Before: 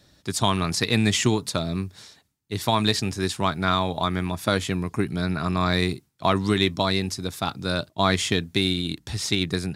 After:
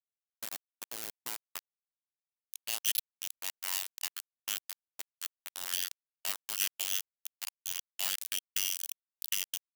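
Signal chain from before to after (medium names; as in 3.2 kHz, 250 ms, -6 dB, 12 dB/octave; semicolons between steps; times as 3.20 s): low-pass sweep 210 Hz -> 5.1 kHz, 0.35–2.31 s; flange 0.69 Hz, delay 1.1 ms, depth 5.7 ms, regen +88%; small samples zeroed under -18 dBFS; formant shift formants -4 st; differentiator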